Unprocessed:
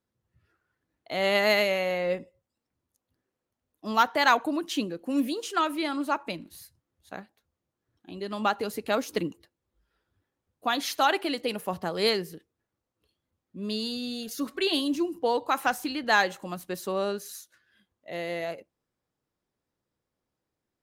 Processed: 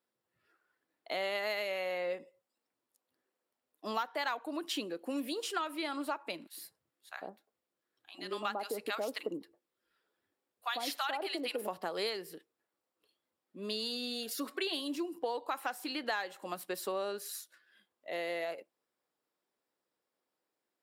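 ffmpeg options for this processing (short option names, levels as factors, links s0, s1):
-filter_complex "[0:a]asettb=1/sr,asplit=3[s0][s1][s2];[s0]atrim=end=6.474[s3];[s1]atrim=start=6.47:end=11.68,asetpts=PTS-STARTPTS,afade=t=in:d=0.004:c=qsin,afade=t=out:st=5.206:d=0.004:c=qsin,acrossover=split=890[s4][s5];[s4]adelay=100[s6];[s6][s5]amix=inputs=2:normalize=0,atrim=end_sample=229761[s7];[s2]atrim=start=11.676[s8];[s3][s7]acrossfade=d=0.004:c1=hsin:c2=qsin[s9];[s9][s8]acrossfade=d=0.004:c1=qsin:c2=hsin,highpass=360,bandreject=f=6300:w=7.1,acompressor=threshold=0.0224:ratio=5"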